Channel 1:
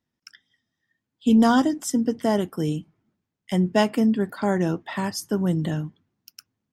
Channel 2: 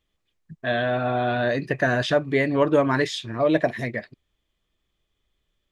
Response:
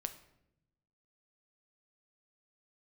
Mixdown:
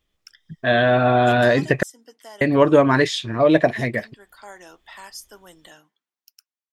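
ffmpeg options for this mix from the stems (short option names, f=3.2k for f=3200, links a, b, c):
-filter_complex "[0:a]highpass=730,highshelf=f=2.8k:g=8,alimiter=limit=-16dB:level=0:latency=1:release=161,volume=-6.5dB,afade=t=out:st=1.36:d=0.61:silence=0.298538[a];[1:a]volume=2dB,asplit=3[b][c][d];[b]atrim=end=1.83,asetpts=PTS-STARTPTS,afade=t=out:st=1.826:d=0.004:c=hsin[e];[c]atrim=start=1.83:end=2.41,asetpts=PTS-STARTPTS,volume=0[f];[d]atrim=start=2.41,asetpts=PTS-STARTPTS,afade=t=in:d=0.004:c=hsin[g];[e][f][g]concat=n=3:v=0:a=1,asplit=2[h][i];[i]apad=whole_len=296555[j];[a][j]sidechaincompress=threshold=-25dB:ratio=8:attack=33:release=227[k];[k][h]amix=inputs=2:normalize=0,dynaudnorm=f=260:g=5:m=7dB"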